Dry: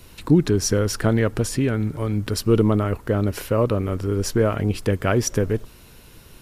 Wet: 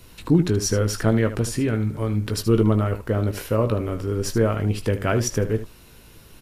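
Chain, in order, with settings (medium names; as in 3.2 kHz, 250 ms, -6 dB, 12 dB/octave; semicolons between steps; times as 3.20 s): early reflections 18 ms -9 dB, 76 ms -12 dB; trim -2 dB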